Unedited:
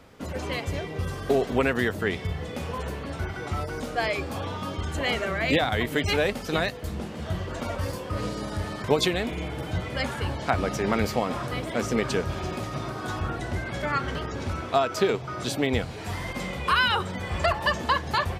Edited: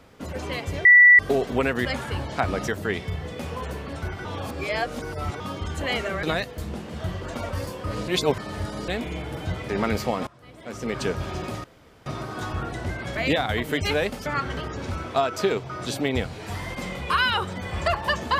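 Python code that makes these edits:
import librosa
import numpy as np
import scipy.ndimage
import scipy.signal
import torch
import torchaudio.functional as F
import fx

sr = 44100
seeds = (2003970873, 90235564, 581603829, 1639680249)

y = fx.edit(x, sr, fx.bleep(start_s=0.85, length_s=0.34, hz=1960.0, db=-8.5),
    fx.reverse_span(start_s=3.42, length_s=1.15),
    fx.move(start_s=5.4, length_s=1.09, to_s=13.84),
    fx.reverse_span(start_s=8.34, length_s=0.8),
    fx.move(start_s=9.95, length_s=0.83, to_s=1.85),
    fx.fade_in_from(start_s=11.36, length_s=0.79, curve='qua', floor_db=-22.5),
    fx.insert_room_tone(at_s=12.73, length_s=0.42), tone=tone)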